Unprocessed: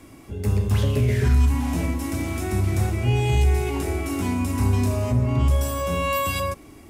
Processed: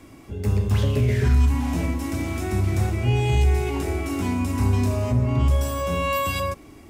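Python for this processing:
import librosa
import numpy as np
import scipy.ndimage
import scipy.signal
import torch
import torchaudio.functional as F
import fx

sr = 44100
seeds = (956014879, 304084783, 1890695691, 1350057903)

y = fx.peak_eq(x, sr, hz=11000.0, db=-5.0, octaves=0.78)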